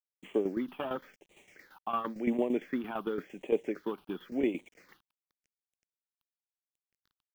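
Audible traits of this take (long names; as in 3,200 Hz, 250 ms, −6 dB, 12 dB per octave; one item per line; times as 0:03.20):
a quantiser's noise floor 10 bits, dither none
tremolo saw down 8.8 Hz, depth 70%
phaser sweep stages 6, 0.93 Hz, lowest notch 510–1,400 Hz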